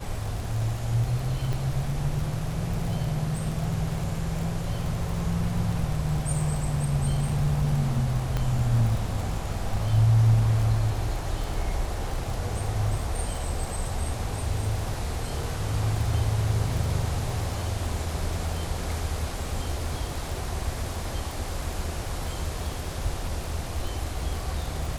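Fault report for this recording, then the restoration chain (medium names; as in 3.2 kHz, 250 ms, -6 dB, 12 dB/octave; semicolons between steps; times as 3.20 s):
crackle 35 per s -30 dBFS
1.53 s: pop
8.37 s: pop -15 dBFS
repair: de-click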